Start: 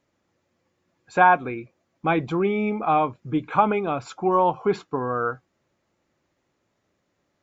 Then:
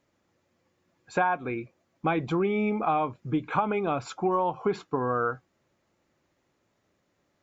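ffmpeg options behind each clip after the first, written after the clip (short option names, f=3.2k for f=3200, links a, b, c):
-af "acompressor=threshold=-22dB:ratio=6"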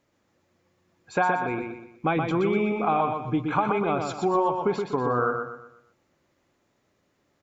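-af "aecho=1:1:122|244|366|488|610:0.562|0.214|0.0812|0.0309|0.0117,volume=1.5dB"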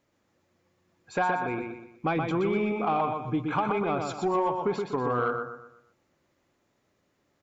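-af "asoftclip=type=tanh:threshold=-14dB,volume=-2dB"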